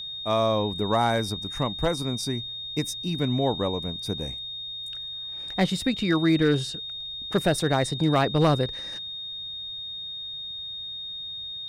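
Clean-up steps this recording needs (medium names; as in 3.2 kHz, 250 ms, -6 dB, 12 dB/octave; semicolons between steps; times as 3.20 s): clip repair -13.5 dBFS; band-stop 3.7 kHz, Q 30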